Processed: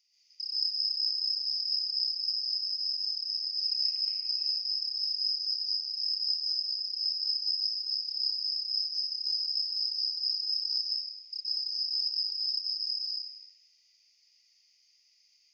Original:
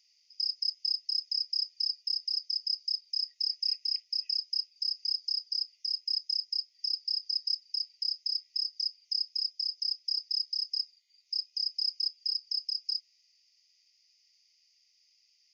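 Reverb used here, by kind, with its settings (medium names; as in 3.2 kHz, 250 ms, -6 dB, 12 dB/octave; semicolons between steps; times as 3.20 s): plate-style reverb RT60 2.1 s, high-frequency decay 0.45×, pre-delay 110 ms, DRR -10 dB; trim -6 dB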